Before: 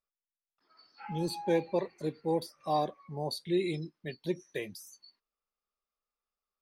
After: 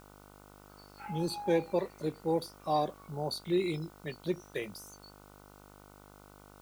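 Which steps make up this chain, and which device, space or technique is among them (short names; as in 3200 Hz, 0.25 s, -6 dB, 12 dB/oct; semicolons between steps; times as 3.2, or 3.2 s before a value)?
video cassette with head-switching buzz (buzz 50 Hz, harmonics 30, -56 dBFS -2 dB/oct; white noise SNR 29 dB)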